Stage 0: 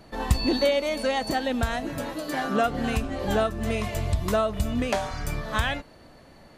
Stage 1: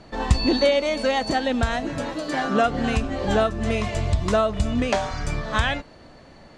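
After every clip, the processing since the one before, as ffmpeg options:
-af "lowpass=f=8k:w=0.5412,lowpass=f=8k:w=1.3066,volume=3.5dB"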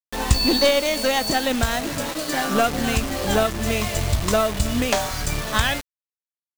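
-af "aeval=exprs='0.562*(cos(1*acos(clip(val(0)/0.562,-1,1)))-cos(1*PI/2))+0.0447*(cos(4*acos(clip(val(0)/0.562,-1,1)))-cos(4*PI/2))':c=same,crystalizer=i=2.5:c=0,acrusher=bits=4:mix=0:aa=0.000001"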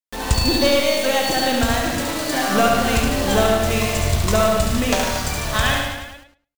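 -filter_complex "[0:a]asplit=2[a][b];[b]aecho=0:1:70|147|231.7|324.9|427.4:0.631|0.398|0.251|0.158|0.1[c];[a][c]amix=inputs=2:normalize=0,dynaudnorm=f=600:g=5:m=11.5dB,asplit=2[d][e];[e]adelay=106,lowpass=f=4.4k:p=1,volume=-6dB,asplit=2[f][g];[g]adelay=106,lowpass=f=4.4k:p=1,volume=0.16,asplit=2[h][i];[i]adelay=106,lowpass=f=4.4k:p=1,volume=0.16[j];[f][h][j]amix=inputs=3:normalize=0[k];[d][k]amix=inputs=2:normalize=0,volume=-1.5dB"

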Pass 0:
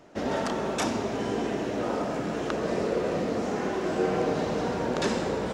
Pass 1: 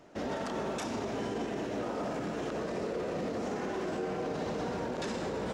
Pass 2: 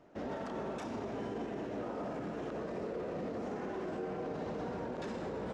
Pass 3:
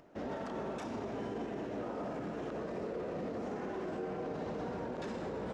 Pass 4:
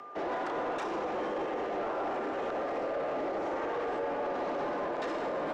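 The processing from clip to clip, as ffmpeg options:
-af "alimiter=limit=-24dB:level=0:latency=1:release=34,volume=-3dB"
-af "highshelf=f=3.1k:g=-11,volume=-4dB"
-af "acompressor=mode=upward:threshold=-59dB:ratio=2.5"
-filter_complex "[0:a]aeval=exprs='val(0)+0.00178*sin(2*PI*1100*n/s)':c=same,afreqshift=100,asplit=2[a][b];[b]highpass=f=720:p=1,volume=15dB,asoftclip=type=tanh:threshold=-27dB[c];[a][c]amix=inputs=2:normalize=0,lowpass=f=2.4k:p=1,volume=-6dB,volume=2.5dB"

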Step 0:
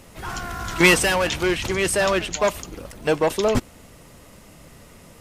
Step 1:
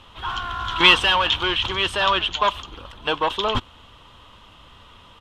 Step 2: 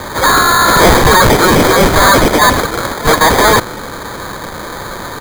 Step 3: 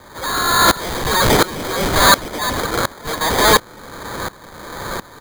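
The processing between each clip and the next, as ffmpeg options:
-af "firequalizer=gain_entry='entry(100,0);entry(150,-10);entry(240,-6);entry(650,-5);entry(990,9);entry(2100,-4);entry(3200,14);entry(4700,-6);entry(7200,-13);entry(11000,-19)':delay=0.05:min_phase=1,volume=-1dB"
-filter_complex "[0:a]asplit=2[a][b];[b]highpass=f=720:p=1,volume=32dB,asoftclip=type=tanh:threshold=-1dB[c];[a][c]amix=inputs=2:normalize=0,lowpass=f=6.8k:p=1,volume=-6dB,acrusher=samples=16:mix=1:aa=0.000001,volume=1dB"
-filter_complex "[0:a]acrossover=split=2600[a][b];[a]asoftclip=type=tanh:threshold=-8.5dB[c];[c][b]amix=inputs=2:normalize=0,aeval=exprs='val(0)*pow(10,-21*if(lt(mod(-1.4*n/s,1),2*abs(-1.4)/1000),1-mod(-1.4*n/s,1)/(2*abs(-1.4)/1000),(mod(-1.4*n/s,1)-2*abs(-1.4)/1000)/(1-2*abs(-1.4)/1000))/20)':c=same,volume=1.5dB"

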